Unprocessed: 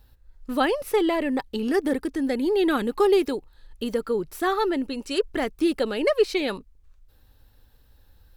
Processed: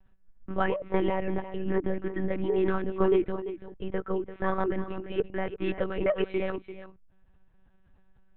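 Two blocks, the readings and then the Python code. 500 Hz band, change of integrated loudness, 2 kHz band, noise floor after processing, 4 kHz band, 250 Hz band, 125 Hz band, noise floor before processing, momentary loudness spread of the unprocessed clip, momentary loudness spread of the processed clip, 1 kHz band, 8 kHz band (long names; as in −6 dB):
−5.0 dB, −5.5 dB, −6.0 dB, −61 dBFS, −14.0 dB, −6.5 dB, +9.5 dB, −58 dBFS, 8 LU, 9 LU, −5.5 dB, below −35 dB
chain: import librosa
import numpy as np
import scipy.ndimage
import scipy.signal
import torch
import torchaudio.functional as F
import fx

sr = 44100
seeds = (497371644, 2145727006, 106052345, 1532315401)

y = scipy.signal.sosfilt(scipy.signal.butter(4, 2500.0, 'lowpass', fs=sr, output='sos'), x)
y = y + 10.0 ** (-12.5 / 20.0) * np.pad(y, (int(340 * sr / 1000.0), 0))[:len(y)]
y = fx.lpc_monotone(y, sr, seeds[0], pitch_hz=190.0, order=10)
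y = y * 10.0 ** (-4.0 / 20.0)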